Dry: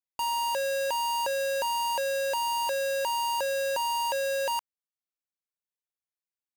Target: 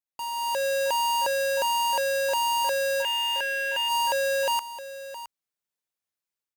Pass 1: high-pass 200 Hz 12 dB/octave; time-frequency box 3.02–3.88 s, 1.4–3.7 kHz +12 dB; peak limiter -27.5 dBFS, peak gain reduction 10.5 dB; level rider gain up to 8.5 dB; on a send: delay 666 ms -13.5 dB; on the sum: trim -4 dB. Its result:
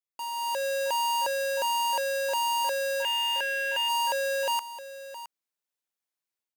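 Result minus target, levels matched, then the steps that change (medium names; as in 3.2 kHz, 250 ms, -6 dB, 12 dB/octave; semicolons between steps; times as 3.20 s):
125 Hz band -11.0 dB
change: high-pass 58 Hz 12 dB/octave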